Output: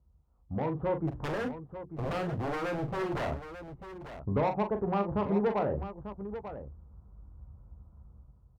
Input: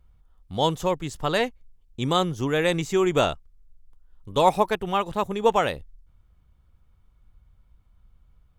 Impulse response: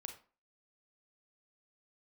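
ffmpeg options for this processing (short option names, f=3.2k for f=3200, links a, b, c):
-filter_complex "[0:a]acompressor=threshold=-33dB:ratio=3,lowpass=f=1.1k:w=0.5412,lowpass=f=1.1k:w=1.3066,aemphasis=mode=reproduction:type=50kf,asplit=2[a][b];[b]adelay=15,volume=-10.5dB[c];[a][c]amix=inputs=2:normalize=0,asoftclip=type=tanh:threshold=-30.5dB,highpass=f=50:w=0.5412,highpass=f=50:w=1.3066,lowshelf=f=380:g=5.5,bandreject=f=60:t=h:w=6,bandreject=f=120:t=h:w=6,bandreject=f=180:t=h:w=6,bandreject=f=240:t=h:w=6,bandreject=f=300:t=h:w=6,bandreject=f=360:t=h:w=6,asettb=1/sr,asplit=3[d][e][f];[d]atrim=end=1.074[g];[e]atrim=start=1.07:end=3.31,asetpts=PTS-STARTPTS,afade=t=in:d=0.004:c=qsin,afade=t=out:st=2.236:d=0.004:c=qsin,aeval=exprs='0.02*(abs(mod(val(0)/0.02+3,4)-2)-1)':c=same[h];[f]atrim=start=3.306[i];[g][h]acrossfade=d=0.004:c1=hsin:c2=qsin[j];[j][i]acrossfade=d=0.004:c1=qsin:c2=hsin,dynaudnorm=f=240:g=5:m=14dB,aecho=1:1:40|893:0.398|0.282,volume=-8.5dB" -ar 48000 -c:a libopus -b:a 64k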